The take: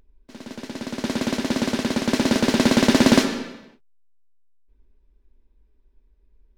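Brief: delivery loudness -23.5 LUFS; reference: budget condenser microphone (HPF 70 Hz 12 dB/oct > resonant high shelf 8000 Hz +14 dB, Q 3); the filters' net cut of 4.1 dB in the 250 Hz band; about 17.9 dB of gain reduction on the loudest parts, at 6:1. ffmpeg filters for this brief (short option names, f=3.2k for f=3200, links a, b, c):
-af "equalizer=f=250:t=o:g=-4.5,acompressor=threshold=-34dB:ratio=6,highpass=70,highshelf=f=8k:t=q:w=3:g=14,volume=12.5dB"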